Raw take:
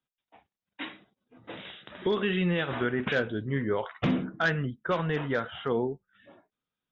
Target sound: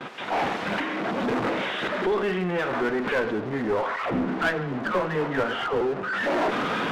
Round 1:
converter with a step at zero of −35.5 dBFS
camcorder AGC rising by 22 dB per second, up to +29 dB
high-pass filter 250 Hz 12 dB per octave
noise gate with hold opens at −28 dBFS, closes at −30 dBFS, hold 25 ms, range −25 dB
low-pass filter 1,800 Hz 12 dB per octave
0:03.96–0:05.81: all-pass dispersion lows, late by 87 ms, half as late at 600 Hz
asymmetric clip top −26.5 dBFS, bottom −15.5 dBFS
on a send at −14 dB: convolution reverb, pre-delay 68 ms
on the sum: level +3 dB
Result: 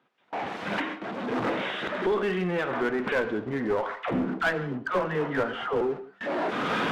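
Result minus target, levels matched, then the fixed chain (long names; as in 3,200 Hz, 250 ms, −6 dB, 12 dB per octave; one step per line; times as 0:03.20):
converter with a step at zero: distortion −7 dB
converter with a step at zero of −26.5 dBFS
camcorder AGC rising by 22 dB per second, up to +29 dB
high-pass filter 250 Hz 12 dB per octave
noise gate with hold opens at −28 dBFS, closes at −30 dBFS, hold 25 ms, range −25 dB
low-pass filter 1,800 Hz 12 dB per octave
0:03.96–0:05.81: all-pass dispersion lows, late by 87 ms, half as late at 600 Hz
asymmetric clip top −26.5 dBFS, bottom −15.5 dBFS
on a send at −14 dB: convolution reverb, pre-delay 68 ms
on the sum: level +3 dB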